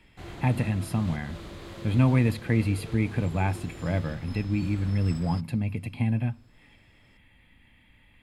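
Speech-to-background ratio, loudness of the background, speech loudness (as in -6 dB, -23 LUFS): 15.0 dB, -42.5 LUFS, -27.5 LUFS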